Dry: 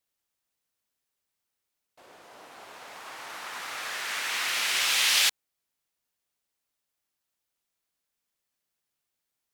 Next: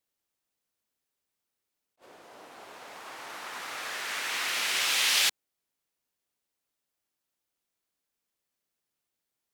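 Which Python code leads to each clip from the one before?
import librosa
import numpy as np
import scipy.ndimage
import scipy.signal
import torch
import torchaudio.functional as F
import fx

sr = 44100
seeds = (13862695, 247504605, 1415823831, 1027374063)

y = fx.peak_eq(x, sr, hz=330.0, db=4.0, octaves=2.0)
y = fx.attack_slew(y, sr, db_per_s=430.0)
y = F.gain(torch.from_numpy(y), -2.0).numpy()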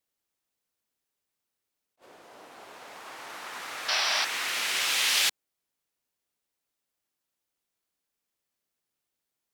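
y = fx.spec_paint(x, sr, seeds[0], shape='noise', start_s=3.88, length_s=0.37, low_hz=580.0, high_hz=6000.0, level_db=-27.0)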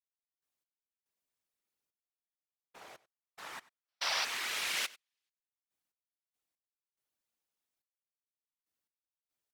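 y = fx.step_gate(x, sr, bpm=71, pattern='..x..xxxx....x', floor_db=-60.0, edge_ms=4.5)
y = fx.whisperise(y, sr, seeds[1])
y = y + 10.0 ** (-20.5 / 20.0) * np.pad(y, (int(95 * sr / 1000.0), 0))[:len(y)]
y = F.gain(torch.from_numpy(y), -6.0).numpy()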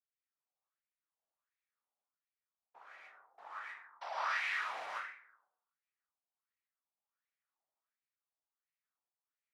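y = fx.rev_plate(x, sr, seeds[2], rt60_s=0.77, hf_ratio=0.4, predelay_ms=105, drr_db=-5.0)
y = fx.wah_lfo(y, sr, hz=1.4, low_hz=730.0, high_hz=2200.0, q=3.3)
y = F.gain(torch.from_numpy(y), 1.0).numpy()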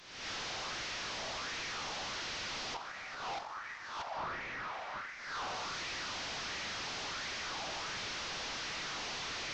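y = fx.delta_mod(x, sr, bps=32000, step_db=-51.0)
y = fx.recorder_agc(y, sr, target_db=-37.5, rise_db_per_s=59.0, max_gain_db=30)
y = F.gain(torch.from_numpy(y), 1.0).numpy()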